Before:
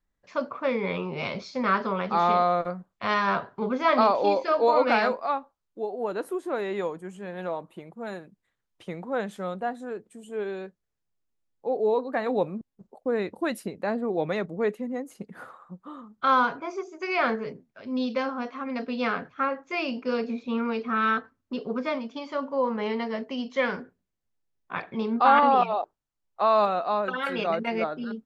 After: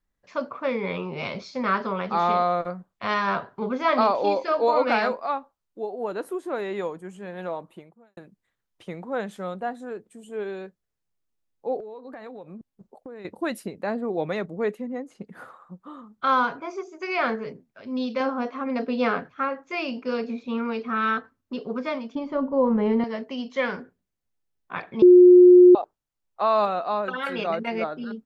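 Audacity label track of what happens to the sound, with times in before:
7.740000	8.170000	fade out quadratic
11.800000	13.250000	compression 16:1, threshold -36 dBFS
14.820000	15.260000	distance through air 78 m
18.200000	19.200000	peaking EQ 440 Hz +6 dB 2.4 oct
22.150000	23.040000	tilt EQ -4.5 dB/octave
25.020000	25.750000	bleep 359 Hz -7.5 dBFS

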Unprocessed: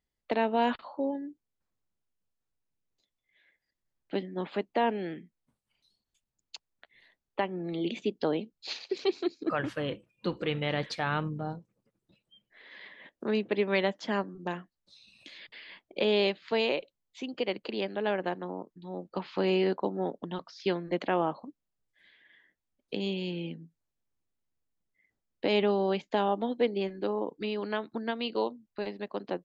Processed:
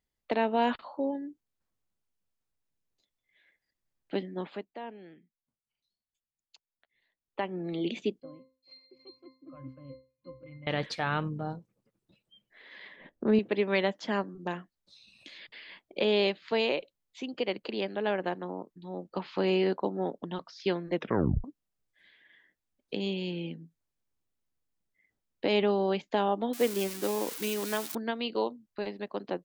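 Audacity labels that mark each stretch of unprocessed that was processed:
4.310000	7.550000	dip -14.5 dB, fades 0.40 s
8.200000	10.670000	pitch-class resonator C, decay 0.33 s
12.960000	13.390000	tilt EQ -3 dB/octave
20.950000	20.950000	tape stop 0.49 s
26.530000	27.950000	zero-crossing glitches of -24 dBFS

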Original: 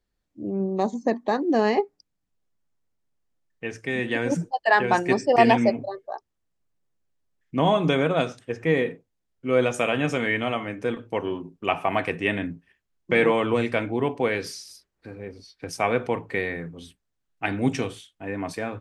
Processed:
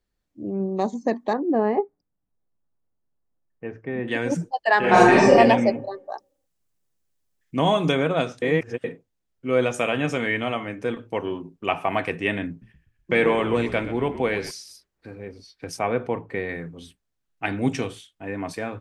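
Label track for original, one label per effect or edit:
1.330000	4.080000	low-pass 1.2 kHz
4.790000	5.300000	reverb throw, RT60 1 s, DRR -8.5 dB
6.100000	7.920000	treble shelf 4.7 kHz +10 dB
8.420000	8.840000	reverse
12.490000	14.510000	frequency-shifting echo 124 ms, feedback 49%, per repeat -53 Hz, level -13.5 dB
15.790000	16.490000	treble shelf 2.2 kHz -10 dB

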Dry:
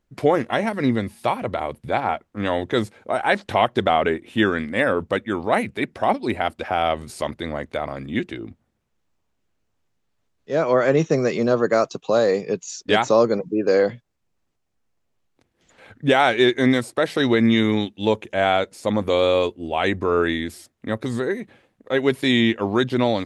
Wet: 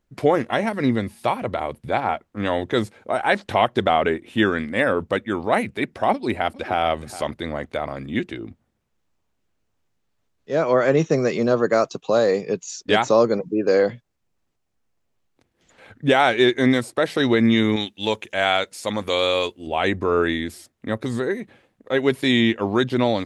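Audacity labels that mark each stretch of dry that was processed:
6.120000	6.810000	echo throw 420 ms, feedback 10%, level -15.5 dB
17.760000	19.670000	tilt shelf lows -6 dB, about 1.1 kHz

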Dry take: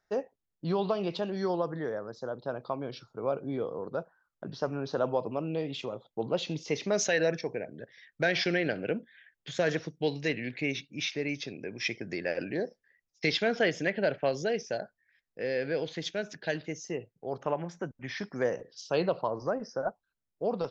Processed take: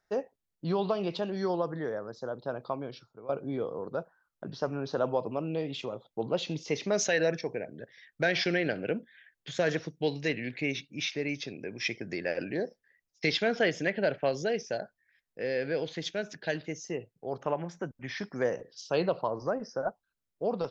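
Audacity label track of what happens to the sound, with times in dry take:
2.740000	3.290000	fade out, to -16.5 dB

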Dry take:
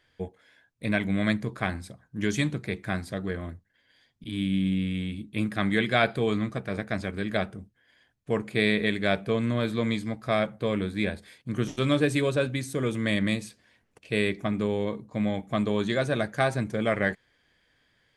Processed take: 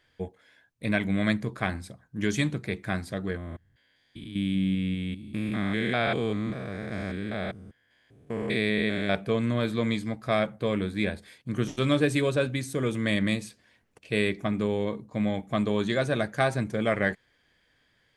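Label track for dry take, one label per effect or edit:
3.370000	9.150000	spectrogram pixelated in time every 200 ms

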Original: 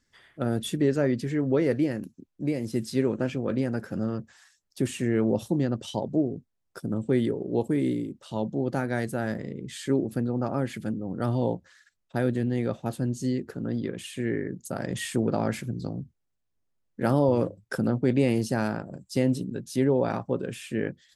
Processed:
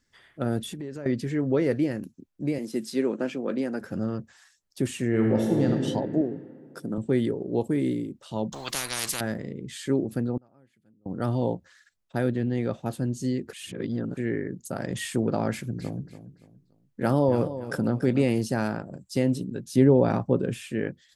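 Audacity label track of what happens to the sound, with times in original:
0.610000	1.060000	compression, threshold -33 dBFS
2.580000	3.810000	high-pass 200 Hz 24 dB/octave
5.080000	5.670000	reverb throw, RT60 2.4 s, DRR -0.5 dB
6.210000	6.980000	high-pass 170 Hz
8.520000	9.210000	spectrum-flattening compressor 10:1
10.370000	11.060000	inverted gate shuts at -29 dBFS, range -31 dB
12.300000	12.760000	low-pass 4 kHz -> 10 kHz
13.530000	14.170000	reverse
15.500000	18.240000	feedback delay 286 ms, feedback 33%, level -12.5 dB
19.710000	20.680000	bass shelf 470 Hz +7.5 dB

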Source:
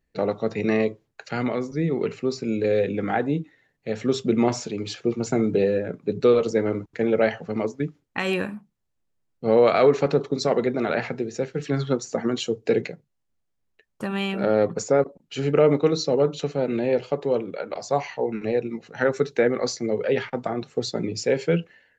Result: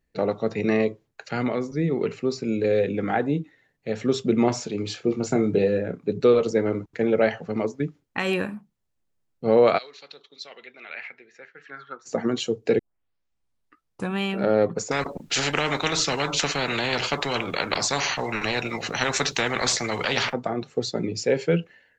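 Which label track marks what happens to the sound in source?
4.680000	6.060000	doubling 29 ms -10 dB
9.770000	12.050000	band-pass filter 4.6 kHz -> 1.3 kHz, Q 3.5
12.790000	12.790000	tape start 1.37 s
14.910000	20.330000	spectrum-flattening compressor 4:1

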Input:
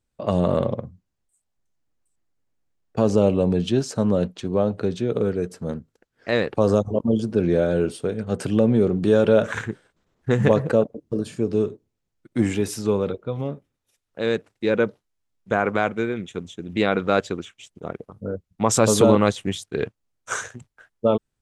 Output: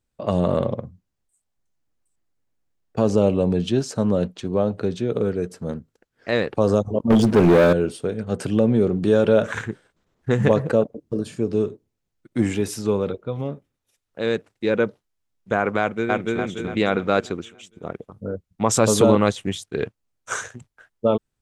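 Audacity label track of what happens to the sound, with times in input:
7.100000	7.730000	waveshaping leveller passes 3
15.800000	16.380000	echo throw 290 ms, feedback 45%, level 0 dB

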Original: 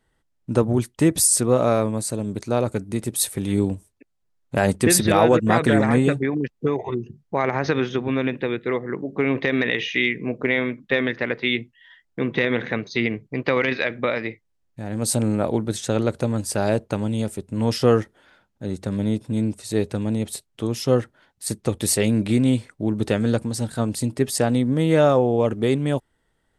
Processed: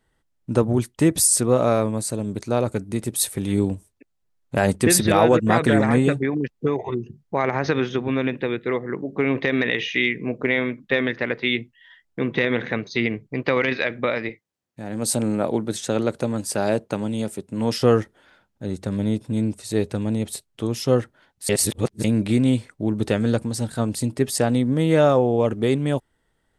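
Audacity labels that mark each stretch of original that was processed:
14.290000	17.830000	high-pass 140 Hz
21.490000	22.040000	reverse

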